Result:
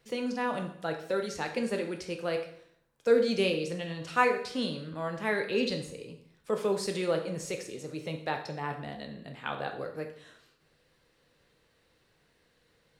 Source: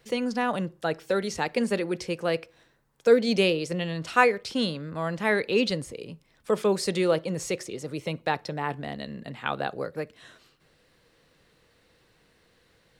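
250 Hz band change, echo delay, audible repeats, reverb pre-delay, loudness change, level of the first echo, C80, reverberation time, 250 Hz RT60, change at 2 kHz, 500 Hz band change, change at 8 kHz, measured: -5.5 dB, none, none, 10 ms, -4.5 dB, none, 12.0 dB, 0.70 s, 0.65 s, -5.0 dB, -4.5 dB, -5.0 dB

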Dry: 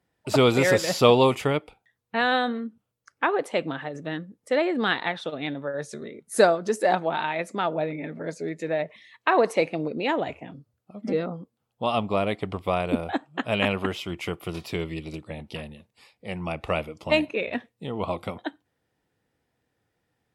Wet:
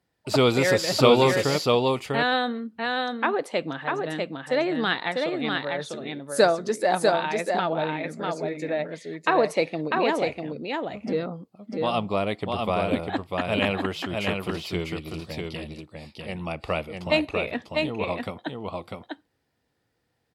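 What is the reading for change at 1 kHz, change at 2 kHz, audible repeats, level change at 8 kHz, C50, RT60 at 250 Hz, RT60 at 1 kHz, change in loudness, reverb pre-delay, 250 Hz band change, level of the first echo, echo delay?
+0.5 dB, +1.0 dB, 1, +1.0 dB, none, none, none, +0.5 dB, none, +0.5 dB, -3.5 dB, 0.647 s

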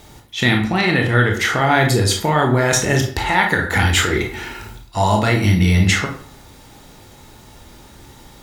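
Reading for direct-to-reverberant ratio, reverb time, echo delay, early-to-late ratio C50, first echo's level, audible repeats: 1.5 dB, 0.50 s, none, 7.0 dB, none, none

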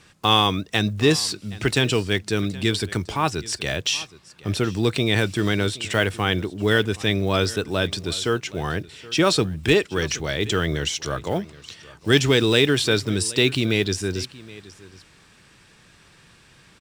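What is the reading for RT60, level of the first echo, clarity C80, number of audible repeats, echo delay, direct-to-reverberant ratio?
none, -20.0 dB, none, 1, 0.772 s, none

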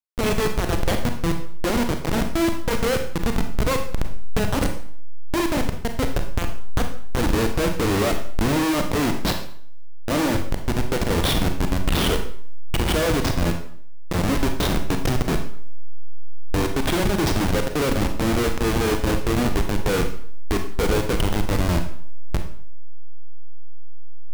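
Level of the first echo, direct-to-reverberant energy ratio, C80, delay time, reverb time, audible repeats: none, 5.0 dB, 11.5 dB, none, 0.55 s, none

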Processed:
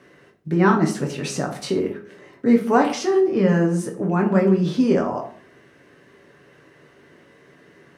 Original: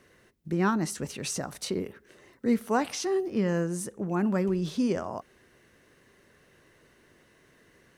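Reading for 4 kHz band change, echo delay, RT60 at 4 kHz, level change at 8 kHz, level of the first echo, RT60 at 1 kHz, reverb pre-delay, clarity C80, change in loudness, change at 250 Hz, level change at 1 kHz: +4.5 dB, none, 0.35 s, +1.0 dB, none, 0.50 s, 7 ms, 14.0 dB, +9.0 dB, +9.0 dB, +9.5 dB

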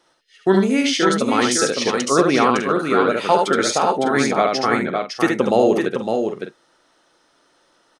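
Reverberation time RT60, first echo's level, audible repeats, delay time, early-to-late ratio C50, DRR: none, -4.0 dB, 3, 72 ms, none, none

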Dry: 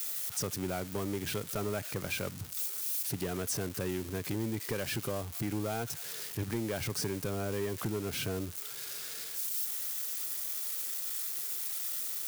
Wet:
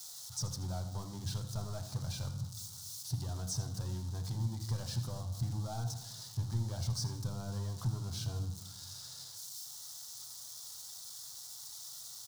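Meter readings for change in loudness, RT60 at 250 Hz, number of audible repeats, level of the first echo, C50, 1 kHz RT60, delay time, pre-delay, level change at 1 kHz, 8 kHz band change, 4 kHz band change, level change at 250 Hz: -5.5 dB, 1.3 s, 1, -13.5 dB, 9.0 dB, 0.90 s, 81 ms, 8 ms, -6.5 dB, -5.5 dB, -3.0 dB, -8.5 dB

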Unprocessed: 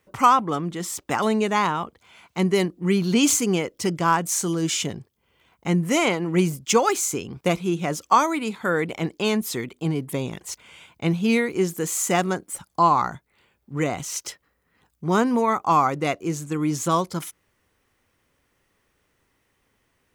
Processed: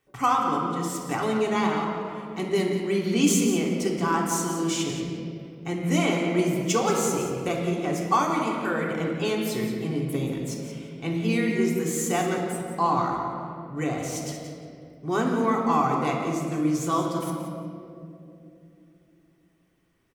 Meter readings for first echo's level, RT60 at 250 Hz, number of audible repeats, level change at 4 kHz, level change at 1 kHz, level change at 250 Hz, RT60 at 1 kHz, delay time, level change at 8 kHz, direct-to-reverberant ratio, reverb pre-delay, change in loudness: -10.0 dB, 3.9 s, 1, -4.0 dB, -4.0 dB, -1.0 dB, 2.1 s, 0.176 s, -5.0 dB, -2.0 dB, 3 ms, -3.0 dB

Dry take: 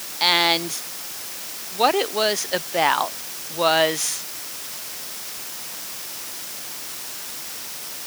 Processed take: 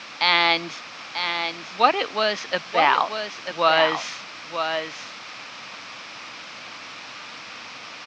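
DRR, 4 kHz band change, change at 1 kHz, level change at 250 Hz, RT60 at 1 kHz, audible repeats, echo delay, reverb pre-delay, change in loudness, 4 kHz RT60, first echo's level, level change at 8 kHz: none, -2.0 dB, +2.0 dB, -2.5 dB, none, 1, 0.941 s, none, +1.5 dB, none, -7.5 dB, -15.5 dB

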